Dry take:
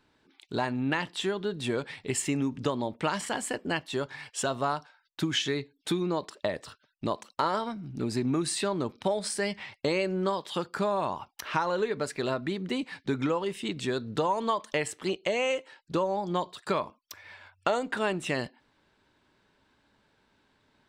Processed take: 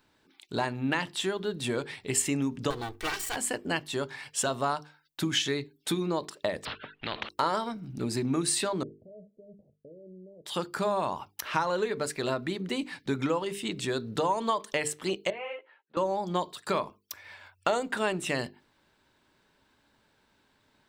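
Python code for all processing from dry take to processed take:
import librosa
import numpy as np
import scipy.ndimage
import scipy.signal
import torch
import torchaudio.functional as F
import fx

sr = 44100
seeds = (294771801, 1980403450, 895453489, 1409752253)

y = fx.chain(x, sr, fx.lower_of_two(delay_ms=2.6),
    fx.peak_eq(hz=410.0, db=-5.5, octaves=2.0), at=(2.7, 3.36))
y = fx.chain(y, sr, fx.steep_lowpass(hz=3100.0, slope=36),
    fx.spectral_comp(ratio=4.0), at=(6.65, 7.29))
y = fx.chain(y, sr, fx.level_steps(step_db=23),
    fx.cheby_ripple(hz=650.0, ripple_db=3), at=(8.83, 10.46))
y = fx.chain(y, sr, fx.bandpass_edges(low_hz=610.0, high_hz=3400.0),
    fx.air_absorb(metres=450.0),
    fx.ensemble(), at=(15.3, 15.97))
y = fx.high_shelf(y, sr, hz=9400.0, db=11.5)
y = fx.hum_notches(y, sr, base_hz=50, count=9)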